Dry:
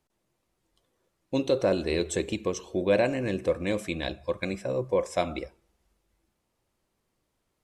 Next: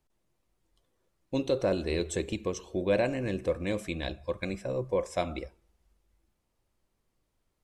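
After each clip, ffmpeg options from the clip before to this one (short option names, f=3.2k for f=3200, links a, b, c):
-af "lowshelf=f=62:g=12,volume=-3.5dB"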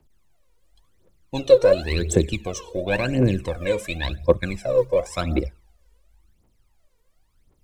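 -filter_complex "[0:a]acrossover=split=100|1100|1800[a][b][c][d];[a]acrusher=samples=15:mix=1:aa=0.000001:lfo=1:lforange=24:lforate=3.4[e];[e][b][c][d]amix=inputs=4:normalize=0,aphaser=in_gain=1:out_gain=1:delay=2.2:decay=0.78:speed=0.93:type=triangular,volume=4.5dB"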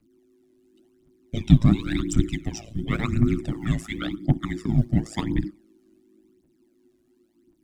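-af "tremolo=f=110:d=0.947,afreqshift=-370,lowshelf=f=250:g=4"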